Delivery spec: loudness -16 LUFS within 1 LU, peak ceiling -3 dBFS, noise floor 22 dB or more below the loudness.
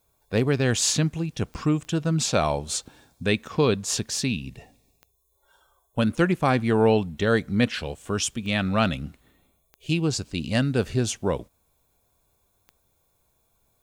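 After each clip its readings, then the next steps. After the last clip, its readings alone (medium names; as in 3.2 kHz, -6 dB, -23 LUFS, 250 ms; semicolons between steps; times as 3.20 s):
clicks found 6; loudness -24.5 LUFS; peak level -8.0 dBFS; loudness target -16.0 LUFS
-> de-click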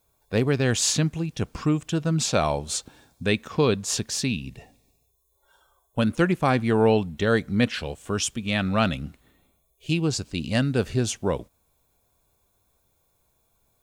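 clicks found 0; loudness -24.5 LUFS; peak level -8.0 dBFS; loudness target -16.0 LUFS
-> trim +8.5 dB; peak limiter -3 dBFS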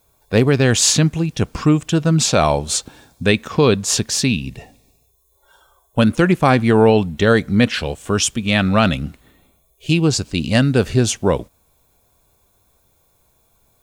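loudness -16.5 LUFS; peak level -3.0 dBFS; noise floor -61 dBFS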